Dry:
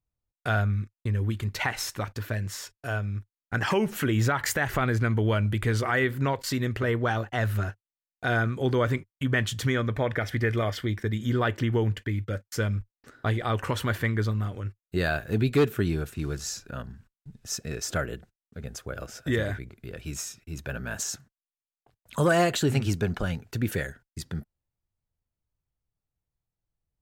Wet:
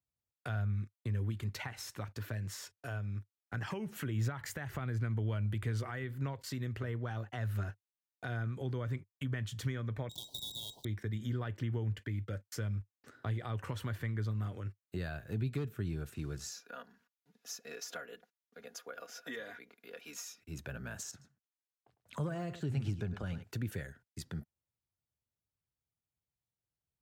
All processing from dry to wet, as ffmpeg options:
-filter_complex "[0:a]asettb=1/sr,asplit=3[s0][s1][s2];[s0]atrim=end=10.094[s3];[s1]atrim=start=10.09:end=10.85,asetpts=PTS-STARTPTS,afade=t=in:d=0.004:c=qsin,afade=t=out:st=0.756:d=0.004:c=qsin,lowpass=f=3300:t=q:w=0.5098,lowpass=f=3300:t=q:w=0.6013,lowpass=f=3300:t=q:w=0.9,lowpass=f=3300:t=q:w=2.563,afreqshift=-3900,acrusher=bits=5:dc=4:mix=0:aa=0.000001,asuperstop=centerf=1800:order=12:qfactor=0.77[s4];[s2]atrim=start=10.846[s5];[s3][s4]acrossfade=d=0.004:c1=hsin:c2=qsin[s6];[s6][s5]acrossfade=d=0.004:c1=qsin:c2=hsin,asettb=1/sr,asplit=3[s7][s8][s9];[s7]atrim=end=16.514[s10];[s8]atrim=start=16.51:end=20.4,asetpts=PTS-STARTPTS,afade=t=in:d=0.004:c=qsin,afade=t=out:st=3.886:d=0.004:c=qsin,highpass=470,equalizer=f=8300:t=o:w=0.24:g=-12.5,aecho=1:1:4.2:0.62,atrim=end_sample=171549[s11];[s9]atrim=start=20.396[s12];[s10][s11]acrossfade=d=0.004:c1=hsin:c2=qsin[s13];[s13][s12]acrossfade=d=0.004:c1=qsin:c2=hsin,asettb=1/sr,asplit=3[s14][s15][s16];[s14]atrim=end=21.114[s17];[s15]atrim=start=21.11:end=23.43,asetpts=PTS-STARTPTS,afade=t=in:d=0.004:c=qsin,afade=t=out:st=2.316:d=0.004:c=qsin,deesser=0.85,highshelf=f=12000:g=-12,aecho=1:1:104:0.188,atrim=end_sample=102312[s18];[s16]atrim=start=23.426[s19];[s17][s18]acrossfade=d=0.004:c1=hsin:c2=qsin[s20];[s20][s19]acrossfade=d=0.004:c1=qsin:c2=hsin,highpass=78,acrossover=split=160[s21][s22];[s22]acompressor=threshold=0.0158:ratio=4[s23];[s21][s23]amix=inputs=2:normalize=0,volume=0.501"

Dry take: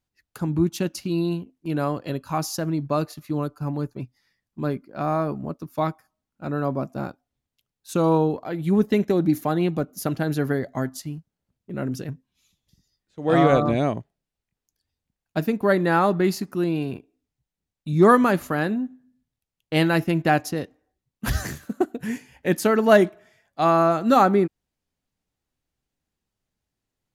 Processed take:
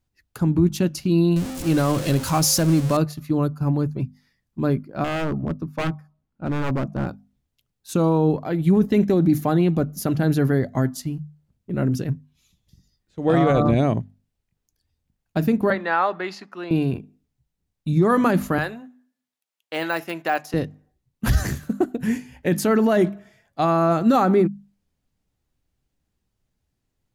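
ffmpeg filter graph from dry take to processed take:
-filter_complex "[0:a]asettb=1/sr,asplit=3[s0][s1][s2];[s0]atrim=end=1.364[s3];[s1]atrim=start=1.36:end=2.97,asetpts=PTS-STARTPTS,afade=t=in:d=0.004:c=qsin,afade=t=out:st=1.606:d=0.004:c=qsin,aeval=exprs='val(0)+0.5*0.0266*sgn(val(0))':c=same,equalizer=f=8600:w=0.43:g=9.5,aeval=exprs='val(0)+0.00631*sin(2*PI*530*n/s)':c=same[s4];[s2]atrim=start=2.966[s5];[s3][s4]acrossfade=d=0.004:c1=hsin:c2=qsin[s6];[s6][s5]acrossfade=d=0.004:c1=qsin:c2=hsin,asettb=1/sr,asplit=3[s7][s8][s9];[s7]atrim=end=5.044[s10];[s8]atrim=start=5.04:end=7.08,asetpts=PTS-STARTPTS,afade=t=in:d=0.004:c=qsin,afade=t=out:st=2.036:d=0.004:c=qsin,lowpass=f=2000:p=1,aeval=exprs='0.0794*(abs(mod(val(0)/0.0794+3,4)-2)-1)':c=same[s11];[s9]atrim=start=7.076[s12];[s10][s11]acrossfade=d=0.004:c1=hsin:c2=qsin[s13];[s13][s12]acrossfade=d=0.004:c1=qsin:c2=hsin,asettb=1/sr,asplit=3[s14][s15][s16];[s14]atrim=end=15.704[s17];[s15]atrim=start=15.7:end=16.71,asetpts=PTS-STARTPTS,afade=t=in:d=0.004:c=qsin,afade=t=out:st=1.006:d=0.004:c=qsin,highpass=210,lowpass=7800,acrossover=split=590 4200:gain=0.1 1 0.178[s18][s19][s20];[s18][s19][s20]amix=inputs=3:normalize=0[s21];[s16]atrim=start=16.706[s22];[s17][s21]acrossfade=d=0.004:c1=hsin:c2=qsin[s23];[s23][s22]acrossfade=d=0.004:c1=qsin:c2=hsin,asettb=1/sr,asplit=3[s24][s25][s26];[s24]atrim=end=18.584[s27];[s25]atrim=start=18.58:end=20.54,asetpts=PTS-STARTPTS,afade=t=in:d=0.004:c=qsin,afade=t=out:st=1.956:d=0.004:c=qsin,deesser=0.75,highpass=690,aeval=exprs='val(0)+0.00282*(sin(2*PI*50*n/s)+sin(2*PI*2*50*n/s)/2+sin(2*PI*3*50*n/s)/3+sin(2*PI*4*50*n/s)/4+sin(2*PI*5*50*n/s)/5)':c=same[s28];[s26]atrim=start=20.536[s29];[s27][s28]acrossfade=d=0.004:c1=hsin:c2=qsin[s30];[s30][s29]acrossfade=d=0.004:c1=qsin:c2=hsin,lowshelf=f=220:g=9.5,bandreject=f=50:t=h:w=6,bandreject=f=100:t=h:w=6,bandreject=f=150:t=h:w=6,bandreject=f=200:t=h:w=6,bandreject=f=250:t=h:w=6,alimiter=limit=0.266:level=0:latency=1:release=22,volume=1.26"

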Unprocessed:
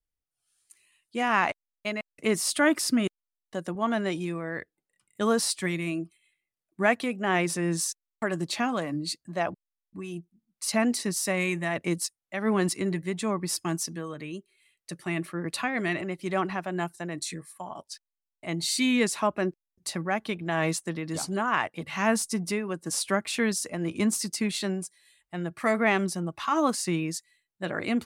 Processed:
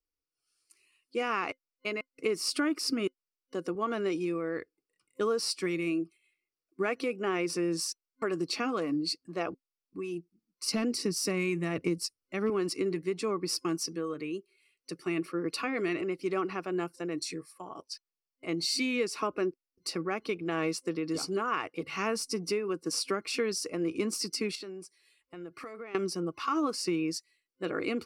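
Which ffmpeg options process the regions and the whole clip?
-filter_complex "[0:a]asettb=1/sr,asplit=3[s0][s1][s2];[s0]atrim=end=10.684[s3];[s1]atrim=start=10.68:end=12.5,asetpts=PTS-STARTPTS,afade=t=in:d=0.004:c=qsin,afade=t=out:st=1.816:d=0.004:c=qsin,bass=f=250:g=11,treble=f=4000:g=2,asoftclip=type=hard:threshold=0.224[s4];[s2]atrim=start=12.496[s5];[s3][s4]acrossfade=d=0.004:c1=hsin:c2=qsin[s6];[s6][s5]acrossfade=d=0.004:c1=qsin:c2=hsin,asettb=1/sr,asplit=3[s7][s8][s9];[s7]atrim=end=24.554[s10];[s8]atrim=start=24.55:end=25.95,asetpts=PTS-STARTPTS,afade=t=in:d=0.004:c=qsin,afade=t=out:st=1.396:d=0.004:c=qsin,bass=f=250:g=-3,treble=f=4000:g=-2,acompressor=threshold=0.0126:ratio=8:attack=3.2:release=140:knee=1:detection=peak[s11];[s9]atrim=start=25.946[s12];[s10][s11]acrossfade=d=0.004:c1=hsin:c2=qsin[s13];[s13][s12]acrossfade=d=0.004:c1=qsin:c2=hsin,superequalizer=6b=3.16:7b=3.55:10b=2.24:12b=2:14b=2.82,acompressor=threshold=0.112:ratio=6,volume=0.447"

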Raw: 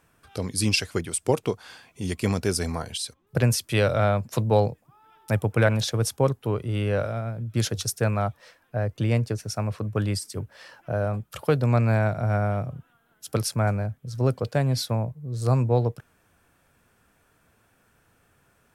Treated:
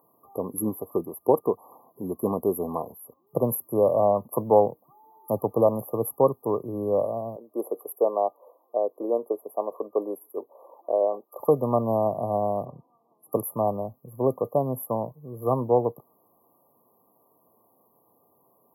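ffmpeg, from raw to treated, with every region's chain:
-filter_complex "[0:a]asettb=1/sr,asplit=3[s0][s1][s2];[s0]atrim=end=7.364[s3];[s1]atrim=start=7.36:end=11.4,asetpts=PTS-STARTPTS,afade=t=in:d=0.004:c=qsin,afade=t=out:st=4.036:d=0.004:c=qsin,highpass=f=380:w=0.5412,highpass=f=380:w=1.3066,tiltshelf=f=830:g=7.5[s4];[s2]atrim=start=11.396[s5];[s3][s4]acrossfade=d=0.004:c1=hsin:c2=qsin[s6];[s6][s5]acrossfade=d=0.004:c1=qsin:c2=hsin,asettb=1/sr,asplit=3[s7][s8][s9];[s7]atrim=end=12.654[s10];[s8]atrim=start=12.65:end=13.32,asetpts=PTS-STARTPTS,afade=t=in:d=0.004:c=qsin,afade=t=out:st=0.666:d=0.004:c=qsin,lowpass=6500,asoftclip=type=hard:threshold=0.0335[s11];[s9]atrim=start=13.316[s12];[s10][s11]acrossfade=d=0.004:c1=hsin:c2=qsin[s13];[s13][s12]acrossfade=d=0.004:c1=qsin:c2=hsin,afftfilt=real='re*(1-between(b*sr/4096,1200,11000))':imag='im*(1-between(b*sr/4096,1200,11000))':win_size=4096:overlap=0.75,highpass=290,highshelf=f=9300:g=6,volume=1.58"

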